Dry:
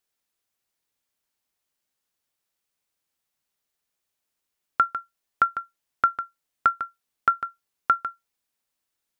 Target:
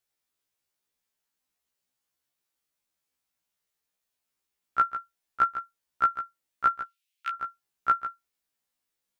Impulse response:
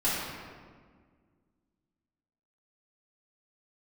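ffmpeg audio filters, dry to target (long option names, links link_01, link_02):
-filter_complex "[0:a]asettb=1/sr,asplit=3[link_01][link_02][link_03];[link_01]atrim=end=6.824[link_04];[link_02]atrim=start=6.82:end=7.33,asetpts=PTS-STARTPTS,afade=type=in:duration=0.004:curve=qsin,afade=type=out:start_time=0.506:duration=0.004:curve=qsin,highpass=frequency=2700:width_type=q:width=2.8[link_05];[link_03]atrim=start=7.326[link_06];[link_04][link_05]acrossfade=duration=0.004:curve1=hsin:curve2=qsin[link_07];[link_07][link_06]acrossfade=duration=0.004:curve1=qsin:curve2=hsin,afftfilt=real='re*1.73*eq(mod(b,3),0)':imag='im*1.73*eq(mod(b,3),0)':win_size=2048:overlap=0.75"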